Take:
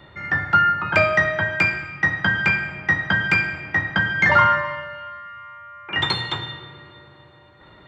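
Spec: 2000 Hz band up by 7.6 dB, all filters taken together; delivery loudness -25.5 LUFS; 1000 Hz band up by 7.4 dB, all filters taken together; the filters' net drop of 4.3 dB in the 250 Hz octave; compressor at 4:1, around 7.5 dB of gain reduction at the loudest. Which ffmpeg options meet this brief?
-af "equalizer=f=250:t=o:g=-8,equalizer=f=1k:t=o:g=7.5,equalizer=f=2k:t=o:g=7,acompressor=threshold=-14dB:ratio=4,volume=-8dB"

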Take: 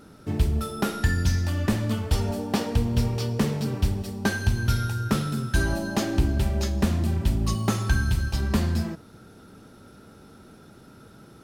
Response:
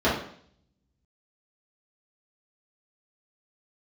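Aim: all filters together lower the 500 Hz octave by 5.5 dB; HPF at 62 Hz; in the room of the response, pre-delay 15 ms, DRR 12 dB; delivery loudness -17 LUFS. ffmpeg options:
-filter_complex "[0:a]highpass=62,equalizer=f=500:t=o:g=-7.5,asplit=2[a][b];[1:a]atrim=start_sample=2205,adelay=15[c];[b][c]afir=irnorm=-1:irlink=0,volume=-29dB[d];[a][d]amix=inputs=2:normalize=0,volume=9.5dB"

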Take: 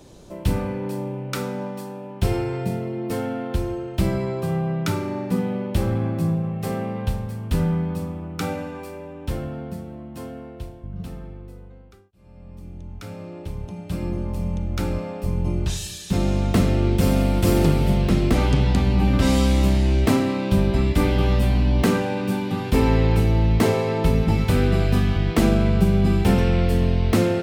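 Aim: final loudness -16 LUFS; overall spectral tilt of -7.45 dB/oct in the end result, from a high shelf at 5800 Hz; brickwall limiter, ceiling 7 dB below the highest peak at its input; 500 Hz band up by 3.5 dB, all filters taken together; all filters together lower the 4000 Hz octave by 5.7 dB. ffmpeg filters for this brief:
-af "equalizer=f=500:t=o:g=4.5,equalizer=f=4k:t=o:g=-6.5,highshelf=f=5.8k:g=-3,volume=7dB,alimiter=limit=-4.5dB:level=0:latency=1"

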